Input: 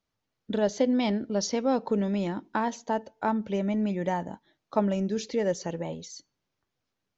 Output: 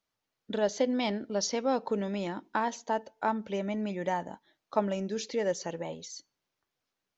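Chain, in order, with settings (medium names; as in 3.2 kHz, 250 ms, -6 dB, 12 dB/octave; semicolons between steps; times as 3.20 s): bass shelf 280 Hz -10 dB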